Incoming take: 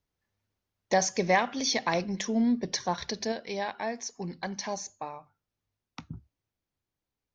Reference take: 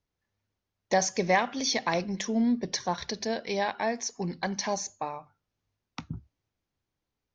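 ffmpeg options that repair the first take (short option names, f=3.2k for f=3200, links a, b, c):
-af "asetnsamples=n=441:p=0,asendcmd='3.32 volume volume 4dB',volume=0dB"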